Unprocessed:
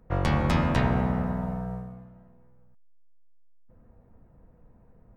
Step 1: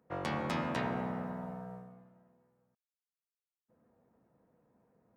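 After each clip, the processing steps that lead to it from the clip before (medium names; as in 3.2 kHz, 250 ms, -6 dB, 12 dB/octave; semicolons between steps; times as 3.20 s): high-pass 210 Hz 12 dB/octave; trim -7.5 dB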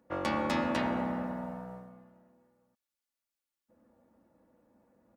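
comb 3.5 ms, depth 61%; trim +3 dB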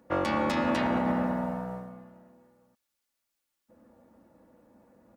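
peak limiter -26 dBFS, peak gain reduction 8.5 dB; trim +7.5 dB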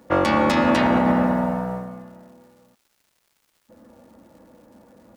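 crackle 270 per s -59 dBFS; trim +9 dB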